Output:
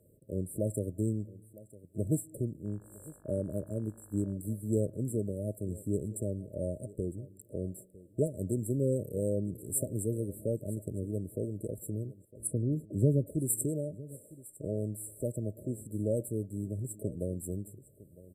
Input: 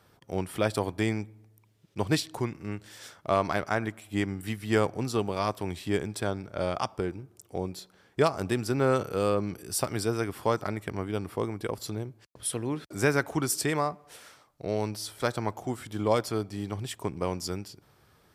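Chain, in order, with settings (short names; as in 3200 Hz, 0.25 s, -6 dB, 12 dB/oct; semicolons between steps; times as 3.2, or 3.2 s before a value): dynamic EQ 470 Hz, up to -6 dB, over -39 dBFS, Q 0.71; FFT band-reject 640–7400 Hz; 2.64–4.32 buzz 50 Hz, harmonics 34, -64 dBFS -3 dB/oct; 12.47–13.27 tone controls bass +7 dB, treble -14 dB; echo 0.956 s -19.5 dB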